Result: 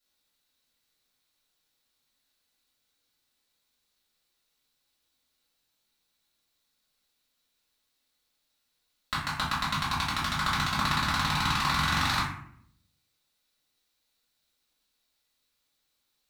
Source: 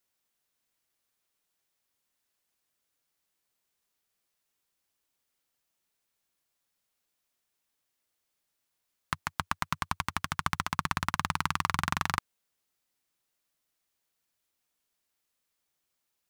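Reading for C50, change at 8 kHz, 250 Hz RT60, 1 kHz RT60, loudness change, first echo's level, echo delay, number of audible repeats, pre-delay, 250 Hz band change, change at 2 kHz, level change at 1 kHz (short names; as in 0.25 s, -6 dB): 3.5 dB, +3.0 dB, 0.90 s, 0.60 s, +4.5 dB, none, none, none, 3 ms, +5.5 dB, +4.5 dB, +3.5 dB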